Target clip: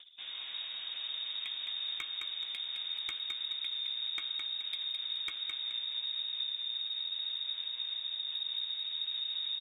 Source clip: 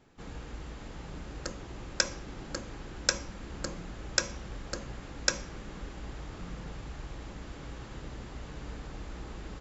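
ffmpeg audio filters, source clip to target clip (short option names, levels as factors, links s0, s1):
-filter_complex "[0:a]highpass=110,aemphasis=mode=reproduction:type=50fm,acompressor=mode=upward:threshold=0.00398:ratio=2.5,asubboost=boost=9:cutoff=160,lowpass=f=3200:t=q:w=0.5098,lowpass=f=3200:t=q:w=0.6013,lowpass=f=3200:t=q:w=0.9,lowpass=f=3200:t=q:w=2.563,afreqshift=-3800,acompressor=threshold=0.0141:ratio=16,volume=37.6,asoftclip=hard,volume=0.0266,asplit=2[s0][s1];[s1]adelay=13,volume=0.251[s2];[s0][s2]amix=inputs=2:normalize=0,asplit=2[s3][s4];[s4]aecho=0:1:213|426|639|852:0.562|0.197|0.0689|0.0241[s5];[s3][s5]amix=inputs=2:normalize=0,anlmdn=0.000631,volume=1.19"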